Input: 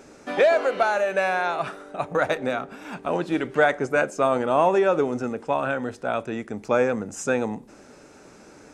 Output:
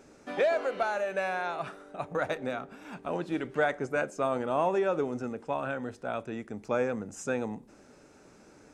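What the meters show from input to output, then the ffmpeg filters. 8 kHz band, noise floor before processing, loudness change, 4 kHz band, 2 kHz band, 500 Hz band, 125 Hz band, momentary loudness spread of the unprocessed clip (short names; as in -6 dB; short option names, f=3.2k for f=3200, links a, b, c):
-8.5 dB, -49 dBFS, -8.0 dB, -8.5 dB, -8.5 dB, -8.0 dB, -6.0 dB, 12 LU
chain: -af "lowshelf=f=240:g=3.5,volume=-8.5dB"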